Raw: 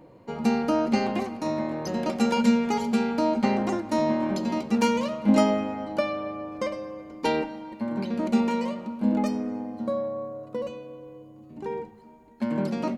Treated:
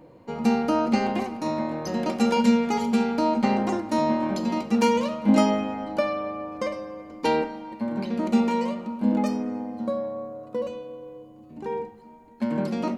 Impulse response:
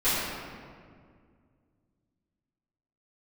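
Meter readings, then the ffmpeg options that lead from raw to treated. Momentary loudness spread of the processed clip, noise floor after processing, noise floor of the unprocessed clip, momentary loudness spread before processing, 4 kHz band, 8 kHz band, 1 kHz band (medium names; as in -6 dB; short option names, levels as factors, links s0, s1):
12 LU, -48 dBFS, -50 dBFS, 13 LU, +1.0 dB, +0.5 dB, +2.5 dB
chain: -filter_complex "[0:a]asplit=2[s0][s1];[1:a]atrim=start_sample=2205,afade=t=out:st=0.13:d=0.01,atrim=end_sample=6174[s2];[s1][s2]afir=irnorm=-1:irlink=0,volume=0.0891[s3];[s0][s3]amix=inputs=2:normalize=0"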